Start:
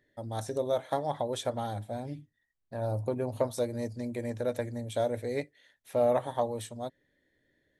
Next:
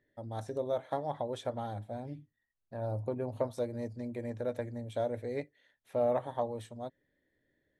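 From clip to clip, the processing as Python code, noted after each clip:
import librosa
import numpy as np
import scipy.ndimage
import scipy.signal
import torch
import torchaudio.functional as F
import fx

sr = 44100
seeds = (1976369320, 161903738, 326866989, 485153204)

y = fx.high_shelf(x, sr, hz=4000.0, db=-11.5)
y = y * 10.0 ** (-3.5 / 20.0)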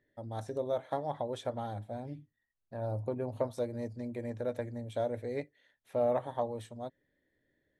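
y = x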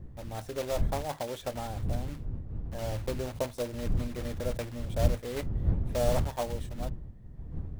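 y = fx.block_float(x, sr, bits=3)
y = fx.dmg_wind(y, sr, seeds[0], corner_hz=89.0, level_db=-33.0)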